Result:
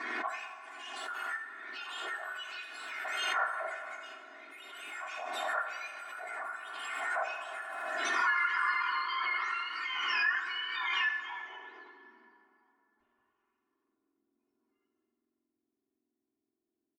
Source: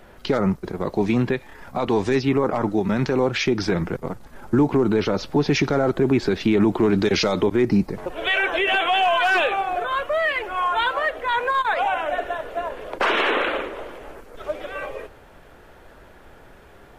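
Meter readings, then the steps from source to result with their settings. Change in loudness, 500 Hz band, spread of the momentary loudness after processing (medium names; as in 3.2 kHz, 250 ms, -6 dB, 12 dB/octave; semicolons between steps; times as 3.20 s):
-12.5 dB, -25.0 dB, 16 LU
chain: spectrum inverted on a logarithmic axis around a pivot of 1.8 kHz; tilt EQ +2.5 dB/octave; hum notches 50/100/150/200/250/300/350/400/450 Hz; comb 2.8 ms, depth 98%; dynamic bell 2.9 kHz, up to +8 dB, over -39 dBFS, Q 4.3; compression 4:1, threshold -24 dBFS, peak gain reduction 14 dB; added noise blue -64 dBFS; low-pass sweep 1.6 kHz -> 110 Hz, 11.02–12.55 s; flange 0.12 Hz, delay 8.8 ms, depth 9.5 ms, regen -66%; on a send: delay 80 ms -12 dB; on the sum: plate-style reverb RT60 3 s, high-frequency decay 0.55×, DRR 5 dB; swell ahead of each attack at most 25 dB/s; trim -4.5 dB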